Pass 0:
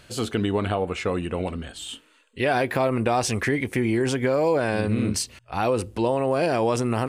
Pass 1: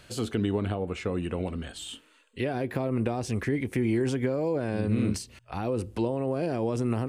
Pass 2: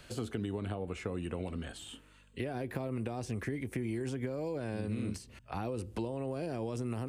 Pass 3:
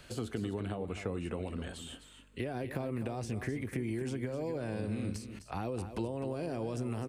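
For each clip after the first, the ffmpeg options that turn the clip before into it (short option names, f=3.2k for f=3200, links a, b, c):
-filter_complex "[0:a]acrossover=split=440[a][b];[b]acompressor=threshold=-34dB:ratio=6[c];[a][c]amix=inputs=2:normalize=0,volume=-2dB"
-filter_complex "[0:a]aeval=exprs='val(0)+0.000891*(sin(2*PI*50*n/s)+sin(2*PI*2*50*n/s)/2+sin(2*PI*3*50*n/s)/3+sin(2*PI*4*50*n/s)/4+sin(2*PI*5*50*n/s)/5)':c=same,acrossover=split=88|2400|6200[a][b][c][d];[a]acompressor=threshold=-46dB:ratio=4[e];[b]acompressor=threshold=-33dB:ratio=4[f];[c]acompressor=threshold=-55dB:ratio=4[g];[d]acompressor=threshold=-51dB:ratio=4[h];[e][f][g][h]amix=inputs=4:normalize=0,volume=-1.5dB"
-af "aecho=1:1:256:0.299"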